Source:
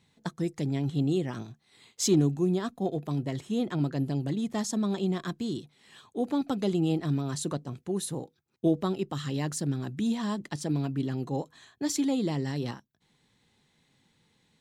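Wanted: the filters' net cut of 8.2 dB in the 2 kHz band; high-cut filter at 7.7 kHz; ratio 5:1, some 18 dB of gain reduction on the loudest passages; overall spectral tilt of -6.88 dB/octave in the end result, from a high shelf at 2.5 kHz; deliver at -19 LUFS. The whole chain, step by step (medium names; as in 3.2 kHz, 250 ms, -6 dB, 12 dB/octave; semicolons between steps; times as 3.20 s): low-pass 7.7 kHz; peaking EQ 2 kHz -8.5 dB; treble shelf 2.5 kHz -4.5 dB; compression 5:1, threshold -40 dBFS; trim +24.5 dB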